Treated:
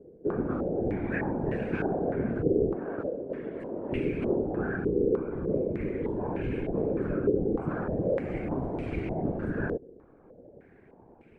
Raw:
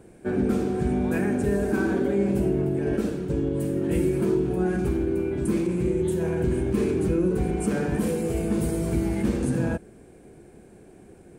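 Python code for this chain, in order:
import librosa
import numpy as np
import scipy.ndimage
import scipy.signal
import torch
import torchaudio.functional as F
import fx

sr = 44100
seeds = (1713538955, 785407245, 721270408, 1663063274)

y = fx.highpass(x, sr, hz=330.0, slope=12, at=(2.74, 3.92))
y = fx.whisperise(y, sr, seeds[0])
y = fx.filter_held_lowpass(y, sr, hz=3.3, low_hz=450.0, high_hz=2500.0)
y = y * librosa.db_to_amplitude(-7.5)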